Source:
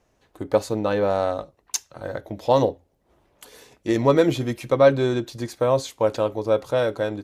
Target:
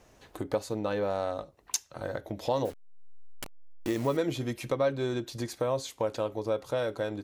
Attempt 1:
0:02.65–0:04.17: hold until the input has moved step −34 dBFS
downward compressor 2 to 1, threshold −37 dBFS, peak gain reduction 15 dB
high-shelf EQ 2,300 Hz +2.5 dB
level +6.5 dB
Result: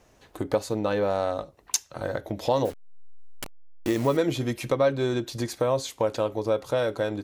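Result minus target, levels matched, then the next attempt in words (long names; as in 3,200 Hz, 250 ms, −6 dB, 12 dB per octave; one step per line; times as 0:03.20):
downward compressor: peak gain reduction −5 dB
0:02.65–0:04.17: hold until the input has moved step −34 dBFS
downward compressor 2 to 1, threshold −47 dBFS, peak gain reduction 20 dB
high-shelf EQ 2,300 Hz +2.5 dB
level +6.5 dB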